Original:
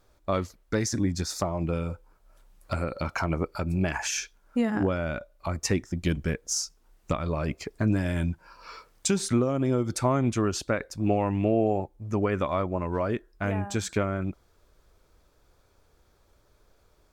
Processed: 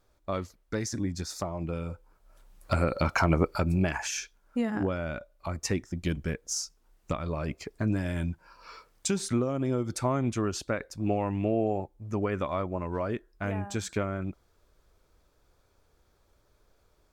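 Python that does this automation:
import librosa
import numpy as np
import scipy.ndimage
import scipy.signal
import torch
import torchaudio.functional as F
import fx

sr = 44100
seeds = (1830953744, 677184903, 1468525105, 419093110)

y = fx.gain(x, sr, db=fx.line((1.75, -5.0), (2.85, 4.0), (3.54, 4.0), (4.08, -3.5)))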